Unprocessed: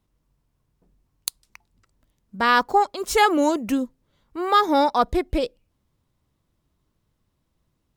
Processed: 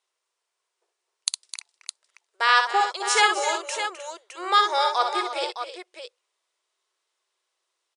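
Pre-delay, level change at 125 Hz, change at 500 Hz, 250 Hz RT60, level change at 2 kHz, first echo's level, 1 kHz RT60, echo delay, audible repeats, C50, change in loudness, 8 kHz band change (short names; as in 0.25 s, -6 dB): none, under -40 dB, -6.5 dB, none, +2.5 dB, -6.0 dB, none, 60 ms, 4, none, -1.0 dB, +5.0 dB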